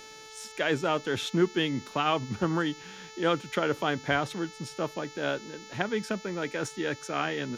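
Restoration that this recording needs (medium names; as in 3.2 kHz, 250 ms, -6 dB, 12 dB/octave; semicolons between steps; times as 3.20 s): de-hum 437.4 Hz, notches 16; expander -39 dBFS, range -21 dB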